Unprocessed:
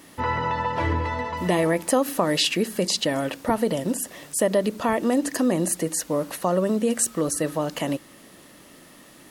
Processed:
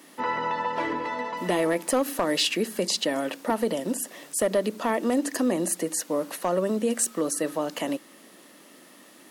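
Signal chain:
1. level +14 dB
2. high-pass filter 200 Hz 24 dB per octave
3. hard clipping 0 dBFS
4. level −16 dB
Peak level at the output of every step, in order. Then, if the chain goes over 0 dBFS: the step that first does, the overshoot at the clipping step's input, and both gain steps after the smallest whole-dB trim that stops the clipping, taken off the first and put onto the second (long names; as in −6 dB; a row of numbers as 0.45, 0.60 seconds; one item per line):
+7.5, +7.5, 0.0, −16.0 dBFS
step 1, 7.5 dB
step 1 +6 dB, step 4 −8 dB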